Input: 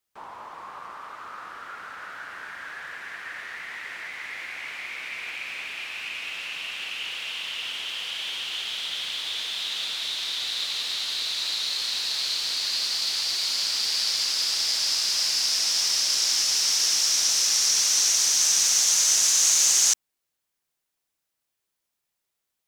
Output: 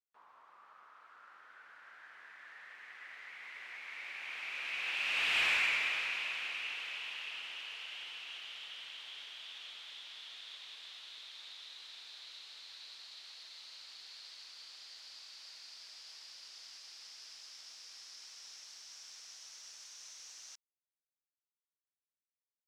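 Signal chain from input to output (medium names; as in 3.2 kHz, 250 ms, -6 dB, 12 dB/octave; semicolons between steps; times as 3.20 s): Doppler pass-by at 5.45 s, 26 m/s, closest 4.9 m; overdrive pedal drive 13 dB, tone 2.9 kHz, clips at -22.5 dBFS; trim +2.5 dB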